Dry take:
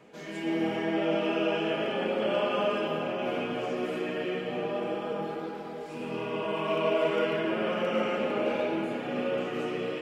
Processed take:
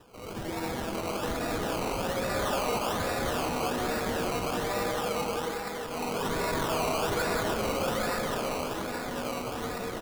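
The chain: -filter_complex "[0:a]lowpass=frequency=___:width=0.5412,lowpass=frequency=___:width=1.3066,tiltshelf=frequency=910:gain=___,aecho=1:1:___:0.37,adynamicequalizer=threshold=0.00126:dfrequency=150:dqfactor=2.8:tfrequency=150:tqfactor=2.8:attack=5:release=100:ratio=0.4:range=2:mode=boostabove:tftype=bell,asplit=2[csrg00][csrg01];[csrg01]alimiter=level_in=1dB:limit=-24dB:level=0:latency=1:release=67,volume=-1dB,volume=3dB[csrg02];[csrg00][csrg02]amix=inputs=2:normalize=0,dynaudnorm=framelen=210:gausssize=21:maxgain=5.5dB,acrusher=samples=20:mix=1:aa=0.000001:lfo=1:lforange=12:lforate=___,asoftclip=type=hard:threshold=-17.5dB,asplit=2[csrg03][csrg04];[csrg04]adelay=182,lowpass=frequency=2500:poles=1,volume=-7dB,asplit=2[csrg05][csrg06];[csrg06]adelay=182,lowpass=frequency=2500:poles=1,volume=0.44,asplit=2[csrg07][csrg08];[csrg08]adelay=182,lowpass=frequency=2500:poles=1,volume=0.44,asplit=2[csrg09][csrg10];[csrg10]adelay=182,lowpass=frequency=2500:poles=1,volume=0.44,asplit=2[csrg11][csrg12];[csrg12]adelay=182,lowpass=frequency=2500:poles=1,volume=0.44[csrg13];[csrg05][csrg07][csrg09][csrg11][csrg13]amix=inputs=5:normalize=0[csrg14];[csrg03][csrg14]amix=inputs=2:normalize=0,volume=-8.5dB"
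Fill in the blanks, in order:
3700, 3700, -9.5, 4.1, 1.2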